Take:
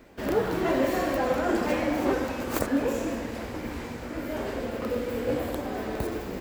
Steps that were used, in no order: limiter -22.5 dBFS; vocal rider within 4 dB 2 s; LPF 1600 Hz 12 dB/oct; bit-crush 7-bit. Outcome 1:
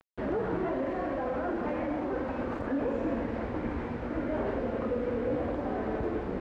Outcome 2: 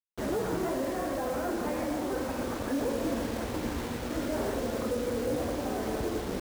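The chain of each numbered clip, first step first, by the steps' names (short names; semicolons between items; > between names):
limiter > vocal rider > bit-crush > LPF; limiter > LPF > bit-crush > vocal rider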